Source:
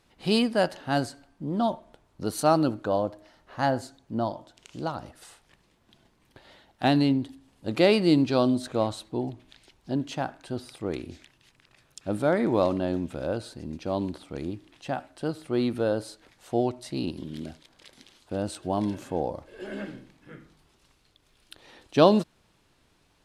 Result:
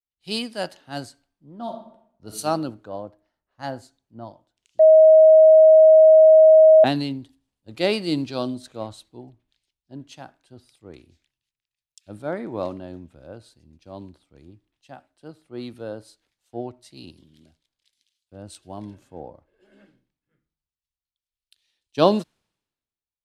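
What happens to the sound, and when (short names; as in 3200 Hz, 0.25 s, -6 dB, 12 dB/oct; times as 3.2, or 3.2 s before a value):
1.62–2.36 reverb throw, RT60 1.2 s, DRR 2 dB
4.79–6.84 bleep 632 Hz -9 dBFS
whole clip: three-band expander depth 100%; gain -7 dB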